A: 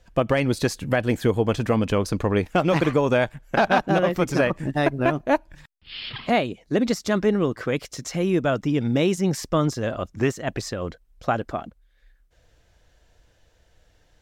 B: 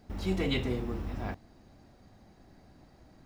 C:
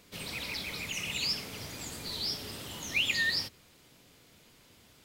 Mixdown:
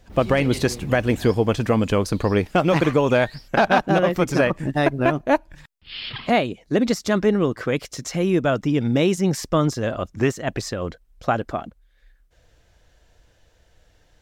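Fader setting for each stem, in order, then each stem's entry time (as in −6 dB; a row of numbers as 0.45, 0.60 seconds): +2.0, −2.5, −14.5 decibels; 0.00, 0.00, 0.00 seconds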